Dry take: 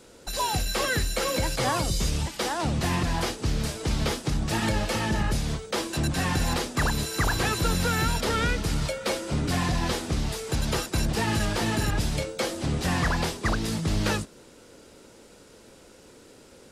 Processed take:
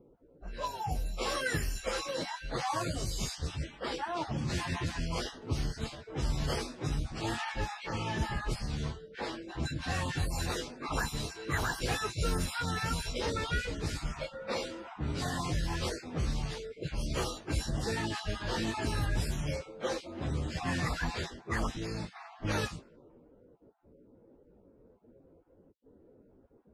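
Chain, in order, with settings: random holes in the spectrogram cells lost 23%; dynamic bell 200 Hz, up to -7 dB, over -51 dBFS, Q 7.8; level-controlled noise filter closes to 460 Hz, open at -21.5 dBFS; time-frequency box 0.41–0.75 s, 940–10000 Hz -10 dB; plain phase-vocoder stretch 1.6×; trim -3.5 dB

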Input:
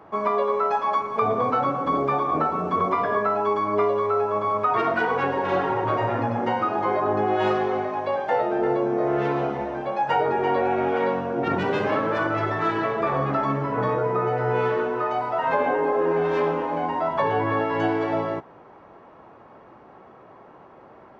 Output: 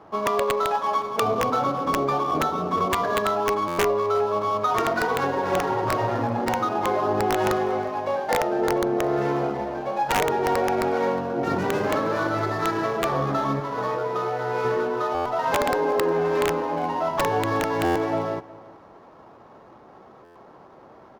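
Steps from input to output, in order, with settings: median filter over 15 samples; 13.60–14.65 s: bass shelf 300 Hz -11 dB; integer overflow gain 13.5 dB; echo from a far wall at 62 m, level -20 dB; buffer glitch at 3.67/15.14/17.84/20.24 s, samples 512, times 9; Opus 64 kbps 48 kHz

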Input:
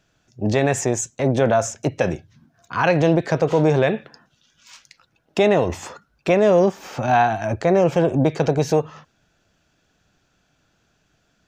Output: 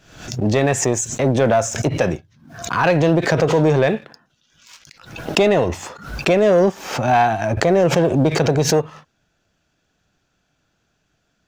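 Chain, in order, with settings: waveshaping leveller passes 1; swell ahead of each attack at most 87 dB/s; trim -1 dB

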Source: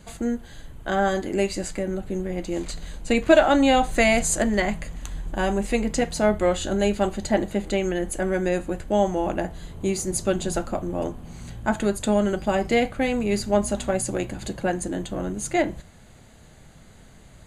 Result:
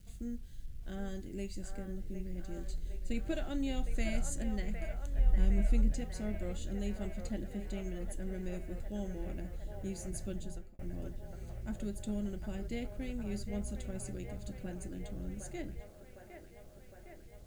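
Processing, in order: 5.18–5.93 s: bass shelf 190 Hz +9 dB; feedback echo behind a band-pass 759 ms, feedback 74%, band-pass 1 kHz, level -4 dB; bit crusher 8-bit; amplifier tone stack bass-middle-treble 10-0-1; 10.32–10.79 s: fade out; trim +2.5 dB

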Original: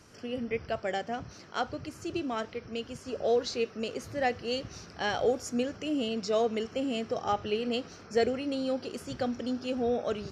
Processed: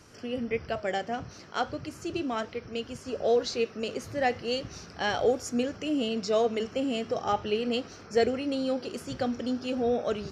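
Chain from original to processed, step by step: flange 0.37 Hz, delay 2.1 ms, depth 5.7 ms, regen -87%; trim +6.5 dB

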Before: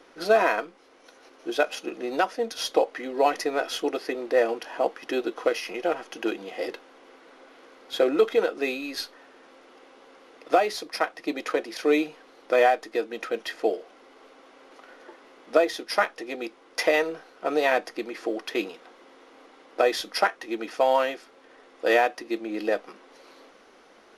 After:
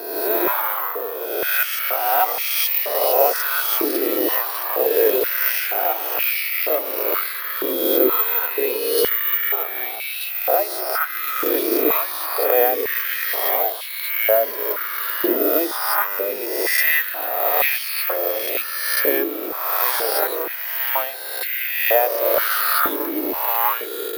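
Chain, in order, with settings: reverse spectral sustain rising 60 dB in 1.39 s; 8.45–8.98 s: distance through air 94 m; ever faster or slower copies 134 ms, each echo -2 st, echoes 3; level rider; treble shelf 2.7 kHz +7.5 dB; careless resampling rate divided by 3×, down filtered, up zero stuff; step-sequenced high-pass 2.1 Hz 330–2300 Hz; trim -12 dB

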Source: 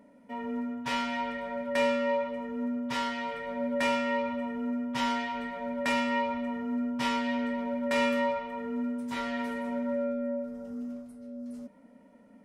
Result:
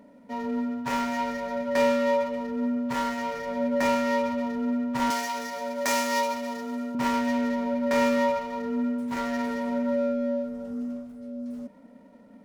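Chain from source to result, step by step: median filter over 15 samples; 5.10–6.95 s: tone controls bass -13 dB, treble +12 dB; trim +5 dB

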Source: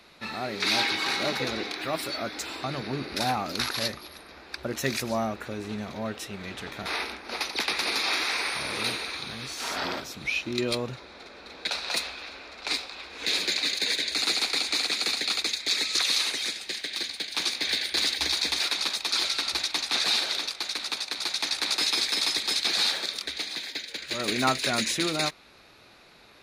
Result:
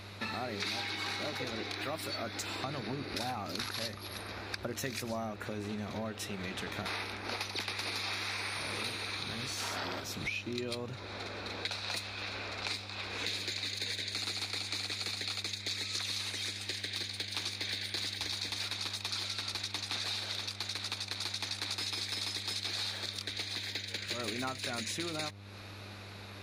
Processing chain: compression 6:1, threshold -40 dBFS, peak gain reduction 19.5 dB; mains buzz 100 Hz, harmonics 34, -55 dBFS -9 dB/octave; trim +4.5 dB

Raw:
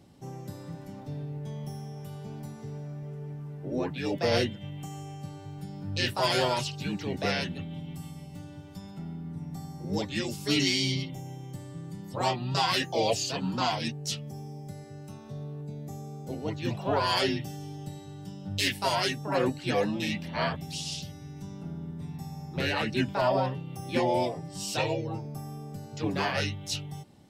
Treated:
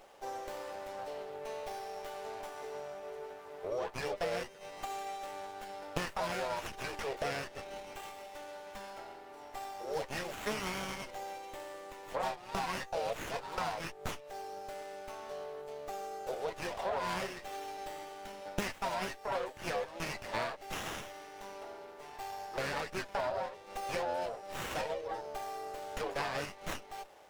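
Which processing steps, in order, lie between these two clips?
steep high-pass 460 Hz 36 dB/octave; compression 6:1, threshold -42 dBFS, peak gain reduction 19 dB; sliding maximum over 9 samples; trim +8.5 dB

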